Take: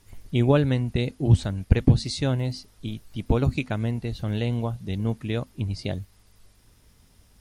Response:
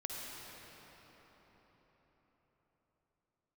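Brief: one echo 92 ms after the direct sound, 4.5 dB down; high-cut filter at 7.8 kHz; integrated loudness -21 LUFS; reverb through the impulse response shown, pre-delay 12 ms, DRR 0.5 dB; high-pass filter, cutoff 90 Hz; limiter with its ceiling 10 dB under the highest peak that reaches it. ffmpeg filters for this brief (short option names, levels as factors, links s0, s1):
-filter_complex "[0:a]highpass=90,lowpass=7800,alimiter=limit=0.168:level=0:latency=1,aecho=1:1:92:0.596,asplit=2[s0][s1];[1:a]atrim=start_sample=2205,adelay=12[s2];[s1][s2]afir=irnorm=-1:irlink=0,volume=0.841[s3];[s0][s3]amix=inputs=2:normalize=0,volume=1.58"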